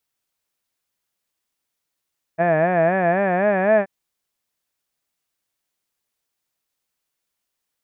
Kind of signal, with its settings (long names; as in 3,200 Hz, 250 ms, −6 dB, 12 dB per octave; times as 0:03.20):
vowel by formant synthesis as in had, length 1.48 s, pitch 161 Hz, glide +4.5 semitones, vibrato 3.9 Hz, vibrato depth 1.3 semitones